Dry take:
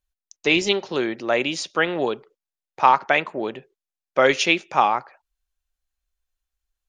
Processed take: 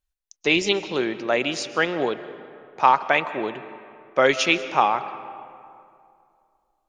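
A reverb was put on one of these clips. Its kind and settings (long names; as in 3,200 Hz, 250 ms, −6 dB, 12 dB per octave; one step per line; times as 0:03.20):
comb and all-pass reverb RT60 2.5 s, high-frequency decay 0.55×, pre-delay 95 ms, DRR 13.5 dB
level −1 dB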